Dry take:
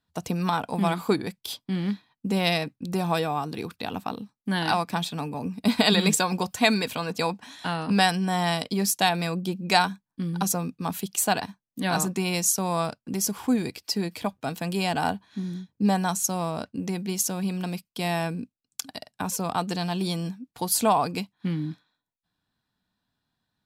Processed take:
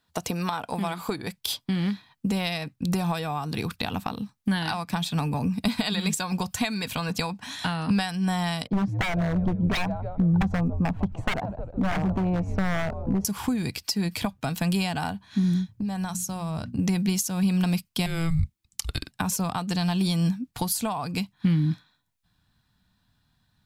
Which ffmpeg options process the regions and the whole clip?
ffmpeg -i in.wav -filter_complex "[0:a]asettb=1/sr,asplit=3[link_01][link_02][link_03];[link_01]atrim=end=8.674[link_04];[link_02]atrim=start=8.67:end=13.25,asetpts=PTS-STARTPTS,afade=type=in:duration=0.004:curve=qsin,afade=type=out:start_time=4.576:duration=0.004:curve=qsin,lowpass=frequency=680:width_type=q:width=1.9,asplit=5[link_05][link_06][link_07][link_08][link_09];[link_06]adelay=154,afreqshift=-83,volume=-16.5dB[link_10];[link_07]adelay=308,afreqshift=-166,volume=-22.7dB[link_11];[link_08]adelay=462,afreqshift=-249,volume=-28.9dB[link_12];[link_09]adelay=616,afreqshift=-332,volume=-35.1dB[link_13];[link_05][link_10][link_11][link_12][link_13]amix=inputs=5:normalize=0,atrim=end_sample=201978,aeval=exprs='0.0841*(abs(mod(val(0)/0.0841+3,4)-2)-1)':channel_layout=same[link_14];[link_03]atrim=start=13.246[link_15];[link_04][link_14]acrossfade=duration=0.004:curve1=hsin:curve2=qsin[link_16];[link_16][link_15]acrossfade=duration=0.004:curve1=qsin:curve2=hsin,asettb=1/sr,asplit=3[link_17][link_18][link_19];[link_17]atrim=end=15.684[link_20];[link_18]atrim=start=15.68:end=16.79,asetpts=PTS-STARTPTS,afade=type=in:duration=0.004:curve=qsin,afade=type=out:start_time=1.106:duration=0.004:curve=qsin,equalizer=frequency=110:width_type=o:width=0.61:gain=12.5,bandreject=frequency=60:width_type=h:width=6,bandreject=frequency=120:width_type=h:width=6,bandreject=frequency=180:width_type=h:width=6,bandreject=frequency=240:width_type=h:width=6,bandreject=frequency=300:width_type=h:width=6,acompressor=threshold=-35dB:ratio=20:attack=3.2:release=140:knee=1:detection=peak[link_21];[link_19]atrim=start=16.786[link_22];[link_20][link_21]acrossfade=duration=0.004:curve1=hsin:curve2=qsin[link_23];[link_23][link_22]acrossfade=duration=0.004:curve1=qsin:curve2=hsin,asettb=1/sr,asplit=3[link_24][link_25][link_26];[link_24]atrim=end=18.064[link_27];[link_25]atrim=start=18.06:end=19.11,asetpts=PTS-STARTPTS,afade=type=in:duration=0.004:curve=qsin,afade=type=out:start_time=1.046:duration=0.004:curve=qsin,acompressor=threshold=-36dB:ratio=2:attack=3.2:release=140:knee=1:detection=peak,afreqshift=-330[link_28];[link_26]atrim=start=19.106[link_29];[link_27][link_28]acrossfade=duration=0.004:curve1=hsin:curve2=qsin[link_30];[link_30][link_29]acrossfade=duration=0.004:curve1=qsin:curve2=hsin,lowshelf=frequency=330:gain=-7,acompressor=threshold=-34dB:ratio=10,asubboost=boost=6.5:cutoff=150,volume=9dB" out.wav

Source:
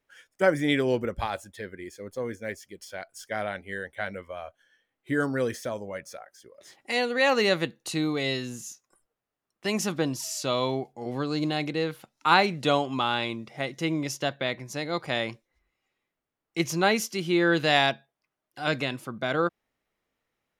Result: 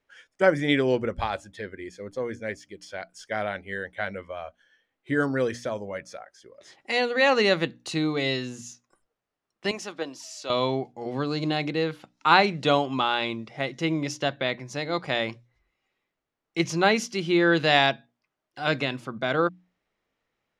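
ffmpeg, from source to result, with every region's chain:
ffmpeg -i in.wav -filter_complex "[0:a]asettb=1/sr,asplit=3[link_01][link_02][link_03];[link_01]atrim=end=9.714[link_04];[link_02]atrim=start=9.71:end=10.5,asetpts=PTS-STARTPTS,afade=type=in:duration=0.004:curve=qsin,afade=type=out:start_time=0.786:duration=0.004:curve=qsin,agate=range=-6dB:threshold=-24dB:ratio=16:release=100:detection=peak,highpass=370[link_05];[link_03]atrim=start=10.496[link_06];[link_04][link_05]acrossfade=duration=0.004:curve1=hsin:curve2=qsin[link_07];[link_07][link_06]acrossfade=duration=0.004:curve1=qsin:curve2=hsin,lowpass=6100,bandreject=frequency=60:width_type=h:width=6,bandreject=frequency=120:width_type=h:width=6,bandreject=frequency=180:width_type=h:width=6,bandreject=frequency=240:width_type=h:width=6,bandreject=frequency=300:width_type=h:width=6,volume=2dB" out.wav

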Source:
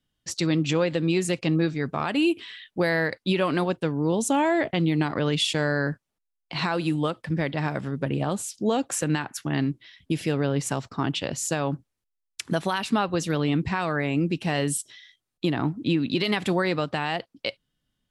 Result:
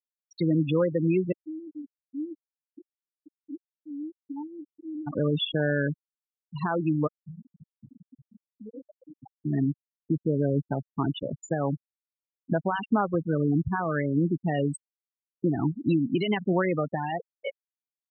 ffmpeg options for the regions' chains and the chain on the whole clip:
ffmpeg -i in.wav -filter_complex "[0:a]asettb=1/sr,asplit=3[link_01][link_02][link_03];[link_01]atrim=end=1.324[link_04];[link_02]atrim=start=1.32:end=5.07,asetpts=PTS-STARTPTS,afade=type=in:duration=0.004:curve=qsin,afade=type=out:start_time=3.746:duration=0.004:curve=qsin,acompressor=threshold=-27dB:ratio=10:attack=3.2:release=140:knee=1:detection=peak,asplit=3[link_05][link_06][link_07];[link_05]bandpass=frequency=300:width_type=q:width=8,volume=0dB[link_08];[link_06]bandpass=frequency=870:width_type=q:width=8,volume=-6dB[link_09];[link_07]bandpass=frequency=2240:width_type=q:width=8,volume=-9dB[link_10];[link_08][link_09][link_10]amix=inputs=3:normalize=0,equalizer=frequency=95:width_type=o:width=1.3:gain=9[link_11];[link_03]atrim=start=5.066[link_12];[link_04][link_11]acrossfade=duration=0.004:curve1=hsin:curve2=qsin[link_13];[link_13][link_12]acrossfade=duration=0.004:curve1=qsin:curve2=hsin,asettb=1/sr,asplit=3[link_14][link_15][link_16];[link_14]atrim=end=7.074[link_17];[link_15]atrim=start=7.07:end=9.23,asetpts=PTS-STARTPTS,afade=type=in:duration=0.004:curve=qsin,afade=type=out:start_time=2.156:duration=0.004:curve=qsin,acompressor=threshold=-35dB:ratio=16:attack=3.2:release=140:knee=1:detection=peak,asplit=7[link_18][link_19][link_20][link_21][link_22][link_23][link_24];[link_19]adelay=111,afreqshift=75,volume=-4dB[link_25];[link_20]adelay=222,afreqshift=150,volume=-10.9dB[link_26];[link_21]adelay=333,afreqshift=225,volume=-17.9dB[link_27];[link_22]adelay=444,afreqshift=300,volume=-24.8dB[link_28];[link_23]adelay=555,afreqshift=375,volume=-31.7dB[link_29];[link_24]adelay=666,afreqshift=450,volume=-38.7dB[link_30];[link_18][link_25][link_26][link_27][link_28][link_29][link_30]amix=inputs=7:normalize=0,atrim=end_sample=95256[link_31];[link_16]atrim=start=9.226[link_32];[link_17][link_31]acrossfade=duration=0.004:curve1=hsin:curve2=qsin[link_33];[link_33][link_32]acrossfade=duration=0.004:curve1=qsin:curve2=hsin,highshelf=frequency=2700:gain=-4.5,afftfilt=real='re*gte(hypot(re,im),0.112)':imag='im*gte(hypot(re,im),0.112)':win_size=1024:overlap=0.75" out.wav

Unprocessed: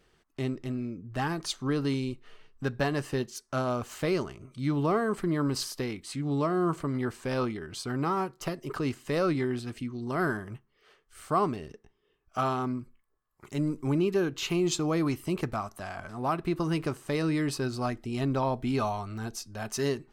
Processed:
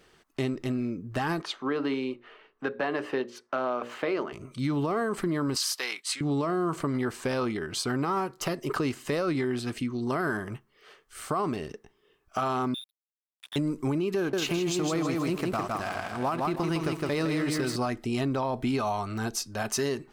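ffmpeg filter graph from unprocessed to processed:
ffmpeg -i in.wav -filter_complex "[0:a]asettb=1/sr,asplit=3[link_01][link_02][link_03];[link_01]atrim=end=1.424[link_04];[link_02]atrim=start=1.42:end=4.33,asetpts=PTS-STARTPTS,afade=type=in:duration=0.004:curve=qsin,afade=type=out:start_time=2.906:duration=0.004:curve=qsin,acrossover=split=240 3300:gain=0.0891 1 0.0891[link_05][link_06][link_07];[link_05][link_06][link_07]amix=inputs=3:normalize=0,bandreject=frequency=60:width_type=h:width=6,bandreject=frequency=120:width_type=h:width=6,bandreject=frequency=180:width_type=h:width=6,bandreject=frequency=240:width_type=h:width=6,bandreject=frequency=300:width_type=h:width=6,bandreject=frequency=360:width_type=h:width=6,bandreject=frequency=420:width_type=h:width=6,bandreject=frequency=480:width_type=h:width=6,bandreject=frequency=540:width_type=h:width=6,bandreject=frequency=600:width_type=h:width=6[link_08];[link_03]atrim=start=4.326[link_09];[link_04][link_08]acrossfade=duration=0.004:curve1=hsin:curve2=qsin[link_10];[link_10][link_09]acrossfade=duration=0.004:curve1=qsin:curve2=hsin,asettb=1/sr,asplit=3[link_11][link_12][link_13];[link_11]atrim=end=5.564[link_14];[link_12]atrim=start=5.56:end=6.21,asetpts=PTS-STARTPTS,afade=type=in:duration=0.004:curve=qsin,afade=type=out:start_time=0.646:duration=0.004:curve=qsin,agate=range=-33dB:threshold=-43dB:ratio=3:release=100:detection=peak,highpass=880,equalizer=frequency=4300:width=0.31:gain=4[link_15];[link_13]atrim=start=6.206[link_16];[link_14][link_15]acrossfade=duration=0.004:curve1=hsin:curve2=qsin[link_17];[link_17][link_16]acrossfade=duration=0.004:curve1=qsin:curve2=hsin,asettb=1/sr,asplit=3[link_18][link_19][link_20];[link_18]atrim=end=12.744[link_21];[link_19]atrim=start=12.74:end=13.56,asetpts=PTS-STARTPTS,afade=type=in:duration=0.004:curve=qsin,afade=type=out:start_time=0.816:duration=0.004:curve=qsin,lowpass=frequency=3200:width_type=q:width=0.5098,lowpass=frequency=3200:width_type=q:width=0.6013,lowpass=frequency=3200:width_type=q:width=0.9,lowpass=frequency=3200:width_type=q:width=2.563,afreqshift=-3800,acompressor=threshold=-41dB:ratio=2.5:attack=3.2:release=140:knee=1:detection=peak,aeval=exprs='sgn(val(0))*max(abs(val(0))-0.00316,0)':channel_layout=same[link_22];[link_20]atrim=start=13.556[link_23];[link_21][link_22]acrossfade=duration=0.004:curve1=hsin:curve2=qsin[link_24];[link_24][link_23]acrossfade=duration=0.004:curve1=qsin:curve2=hsin,asettb=1/sr,asplit=3[link_25][link_26][link_27];[link_25]atrim=end=14.174[link_28];[link_26]atrim=start=14.17:end=17.76,asetpts=PTS-STARTPTS,afade=type=in:duration=0.004:curve=qsin,afade=type=out:start_time=3.586:duration=0.004:curve=qsin,aeval=exprs='sgn(val(0))*max(abs(val(0))-0.00422,0)':channel_layout=same,aecho=1:1:160|320|480|640:0.596|0.185|0.0572|0.0177,atrim=end_sample=158319[link_29];[link_27]atrim=start=17.756[link_30];[link_28][link_29]acrossfade=duration=0.004:curve1=hsin:curve2=qsin[link_31];[link_31][link_30]acrossfade=duration=0.004:curve1=qsin:curve2=hsin,lowshelf=frequency=130:gain=-9,alimiter=limit=-23.5dB:level=0:latency=1:release=31,acompressor=threshold=-32dB:ratio=6,volume=7.5dB" out.wav

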